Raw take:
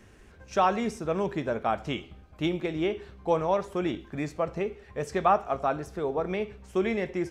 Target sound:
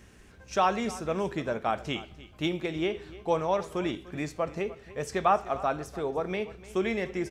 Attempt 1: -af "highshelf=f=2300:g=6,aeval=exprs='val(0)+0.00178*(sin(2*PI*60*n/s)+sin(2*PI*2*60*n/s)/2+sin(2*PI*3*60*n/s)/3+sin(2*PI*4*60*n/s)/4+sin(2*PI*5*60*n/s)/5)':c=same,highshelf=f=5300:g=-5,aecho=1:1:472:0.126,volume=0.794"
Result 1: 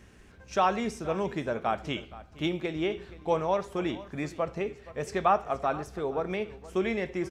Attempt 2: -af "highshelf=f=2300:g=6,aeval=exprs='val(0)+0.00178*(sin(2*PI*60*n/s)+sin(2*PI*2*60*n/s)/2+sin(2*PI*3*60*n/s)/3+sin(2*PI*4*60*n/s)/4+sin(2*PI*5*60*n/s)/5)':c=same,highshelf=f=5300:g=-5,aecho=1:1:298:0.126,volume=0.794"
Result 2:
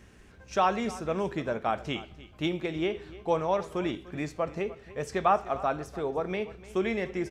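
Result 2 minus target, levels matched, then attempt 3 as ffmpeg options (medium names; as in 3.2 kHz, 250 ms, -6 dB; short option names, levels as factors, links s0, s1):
8 kHz band -3.0 dB
-af "highshelf=f=2300:g=6,aeval=exprs='val(0)+0.00178*(sin(2*PI*60*n/s)+sin(2*PI*2*60*n/s)/2+sin(2*PI*3*60*n/s)/3+sin(2*PI*4*60*n/s)/4+sin(2*PI*5*60*n/s)/5)':c=same,aecho=1:1:298:0.126,volume=0.794"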